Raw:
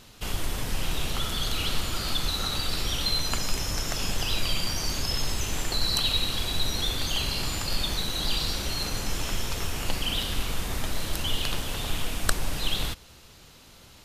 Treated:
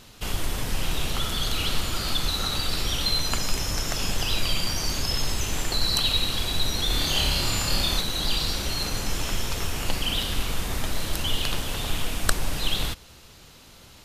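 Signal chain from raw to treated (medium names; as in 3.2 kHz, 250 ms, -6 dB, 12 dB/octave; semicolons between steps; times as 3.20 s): 6.87–8.01 s: flutter echo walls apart 4.8 m, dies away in 0.5 s; trim +2 dB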